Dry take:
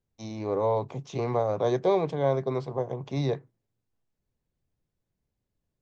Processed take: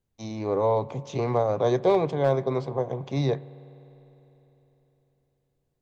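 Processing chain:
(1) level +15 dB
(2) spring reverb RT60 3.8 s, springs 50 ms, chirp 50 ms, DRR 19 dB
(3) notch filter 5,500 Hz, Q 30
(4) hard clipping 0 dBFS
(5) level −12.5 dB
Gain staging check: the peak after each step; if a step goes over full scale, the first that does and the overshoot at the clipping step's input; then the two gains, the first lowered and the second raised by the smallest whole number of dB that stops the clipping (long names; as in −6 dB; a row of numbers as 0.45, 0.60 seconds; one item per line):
+2.5, +3.0, +3.0, 0.0, −12.5 dBFS
step 1, 3.0 dB
step 1 +12 dB, step 5 −9.5 dB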